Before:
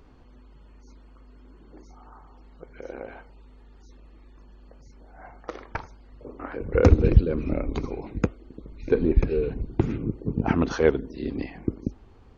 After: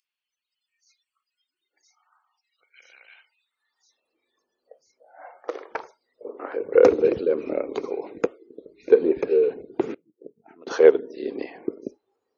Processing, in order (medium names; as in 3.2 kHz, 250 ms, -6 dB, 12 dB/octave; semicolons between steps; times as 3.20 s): 9.94–10.67 s: inverted gate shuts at -24 dBFS, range -26 dB; spectral noise reduction 22 dB; high-pass sweep 2.7 kHz -> 440 Hz, 3.24–4.16 s